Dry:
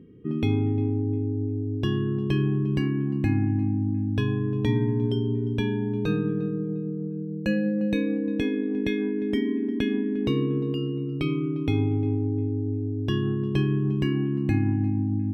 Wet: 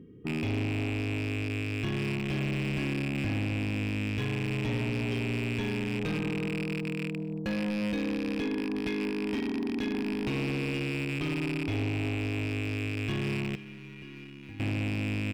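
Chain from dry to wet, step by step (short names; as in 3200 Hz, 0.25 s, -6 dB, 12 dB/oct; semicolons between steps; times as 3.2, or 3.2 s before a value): rattling part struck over -29 dBFS, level -20 dBFS; in parallel at +1 dB: limiter -19.5 dBFS, peak gain reduction 7.5 dB; 13.55–14.6 on the sum: resonator 480 Hz, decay 0.54 s, mix 90%; soft clip -19 dBFS, distortion -13 dB; outdoor echo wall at 39 m, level -19 dB; gain -7.5 dB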